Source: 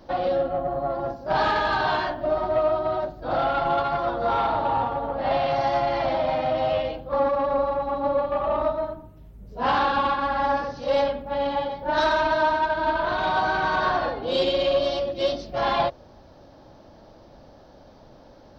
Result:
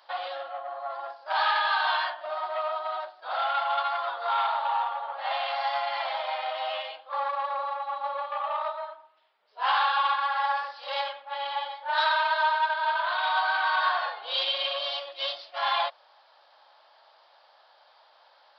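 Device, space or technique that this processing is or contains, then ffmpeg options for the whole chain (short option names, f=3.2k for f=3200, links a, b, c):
musical greeting card: -af "aresample=11025,aresample=44100,highpass=f=860:w=0.5412,highpass=f=860:w=1.3066,equalizer=f=3.3k:t=o:w=0.38:g=4"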